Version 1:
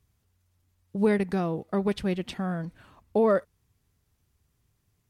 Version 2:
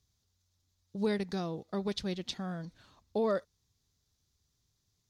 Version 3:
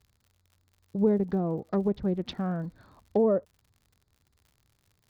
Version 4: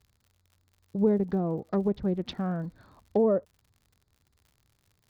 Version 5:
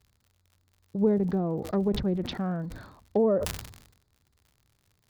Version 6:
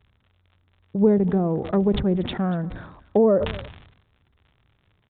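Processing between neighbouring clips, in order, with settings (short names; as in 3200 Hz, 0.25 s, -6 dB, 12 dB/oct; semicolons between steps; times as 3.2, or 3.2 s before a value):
band shelf 4900 Hz +12.5 dB 1.2 oct; gain -8 dB
Wiener smoothing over 15 samples; treble ducked by the level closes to 640 Hz, closed at -30 dBFS; crackle 85/s -57 dBFS; gain +8 dB
nothing audible
sustainer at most 68 dB/s
downsampling 8000 Hz; echo 0.237 s -20 dB; gain +6 dB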